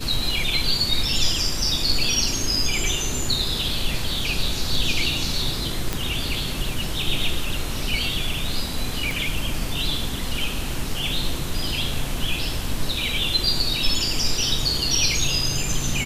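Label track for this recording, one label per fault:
5.930000	5.930000	click −8 dBFS
9.110000	9.110000	click

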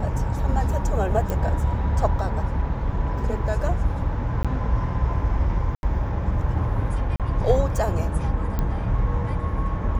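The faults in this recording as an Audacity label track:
1.300000	1.300000	click
4.430000	4.450000	drop-out 16 ms
5.750000	5.830000	drop-out 81 ms
7.160000	7.200000	drop-out 37 ms
8.590000	8.590000	click −13 dBFS

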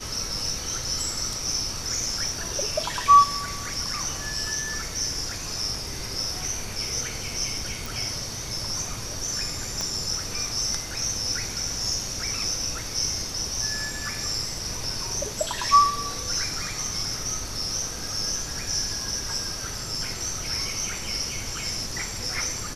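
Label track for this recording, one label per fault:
2.280000	2.280000	drop-out 2.7 ms
7.860000	7.860000	click
9.810000	9.810000	click −14 dBFS

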